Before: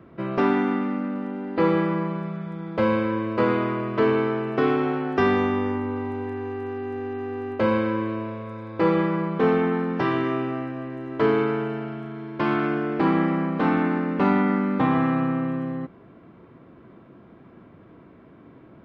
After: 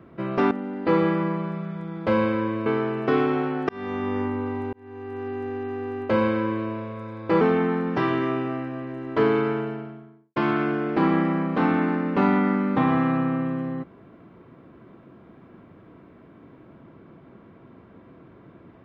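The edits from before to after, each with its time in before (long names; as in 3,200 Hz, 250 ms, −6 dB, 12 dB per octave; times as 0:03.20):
0:00.51–0:01.22: remove
0:03.37–0:04.16: remove
0:05.19–0:05.72: fade in
0:06.23–0:06.78: fade in
0:08.91–0:09.44: remove
0:11.52–0:12.39: fade out and dull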